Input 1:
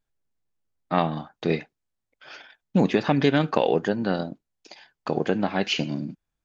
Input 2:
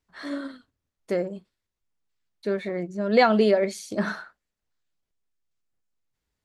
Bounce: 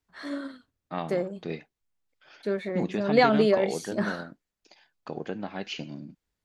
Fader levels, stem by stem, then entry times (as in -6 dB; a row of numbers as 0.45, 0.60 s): -10.5, -2.0 dB; 0.00, 0.00 s